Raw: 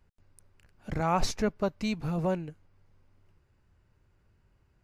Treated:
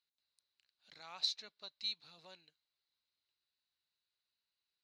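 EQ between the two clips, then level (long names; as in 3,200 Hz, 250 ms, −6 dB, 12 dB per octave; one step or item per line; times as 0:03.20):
resonant band-pass 4,000 Hz, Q 11
+8.0 dB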